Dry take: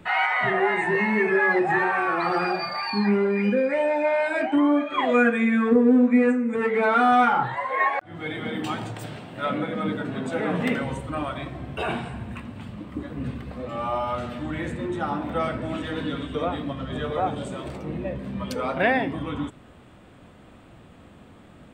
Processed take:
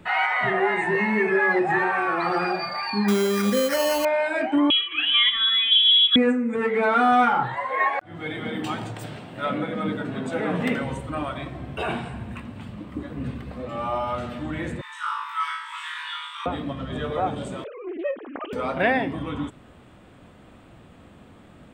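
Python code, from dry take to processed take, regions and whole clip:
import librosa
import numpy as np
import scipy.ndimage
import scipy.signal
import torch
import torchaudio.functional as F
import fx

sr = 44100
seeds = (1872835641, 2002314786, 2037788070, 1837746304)

y = fx.chain(x, sr, fx.high_shelf(hz=3600.0, db=10.5),
    fx.sample_hold(seeds[0], rate_hz=3600.0, jitter_pct=0), at=(3.08, 4.05))
y = fx.chain(y, sr, fx.high_shelf(hz=2300.0, db=-7.5),
    fx.freq_invert(carrier_hz=3600), at=(4.7, 6.16))
y = fx.chain(y, sr, fx.brickwall_highpass(low_hz=870.0),
    fx.room_flutter(wall_m=3.3, rt60_s=0.73), at=(14.81, 16.46))
y = fx.chain(y, sr, fx.sine_speech(),
    fx.highpass(hz=280.0, slope=24),
    fx.doppler_dist(depth_ms=0.15), at=(17.64, 18.53))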